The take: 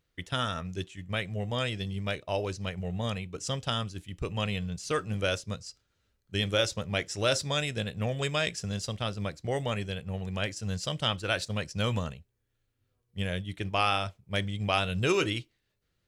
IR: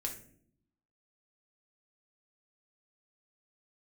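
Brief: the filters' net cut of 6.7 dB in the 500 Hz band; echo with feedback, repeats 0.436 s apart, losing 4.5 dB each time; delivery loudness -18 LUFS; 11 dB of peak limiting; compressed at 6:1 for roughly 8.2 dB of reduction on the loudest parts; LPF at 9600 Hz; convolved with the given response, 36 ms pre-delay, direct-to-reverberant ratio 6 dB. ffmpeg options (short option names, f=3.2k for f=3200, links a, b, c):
-filter_complex "[0:a]lowpass=9.6k,equalizer=f=500:t=o:g=-8.5,acompressor=threshold=-33dB:ratio=6,alimiter=level_in=6.5dB:limit=-24dB:level=0:latency=1,volume=-6.5dB,aecho=1:1:436|872|1308|1744|2180|2616|3052|3488|3924:0.596|0.357|0.214|0.129|0.0772|0.0463|0.0278|0.0167|0.01,asplit=2[a][b];[1:a]atrim=start_sample=2205,adelay=36[c];[b][c]afir=irnorm=-1:irlink=0,volume=-6.5dB[d];[a][d]amix=inputs=2:normalize=0,volume=20.5dB"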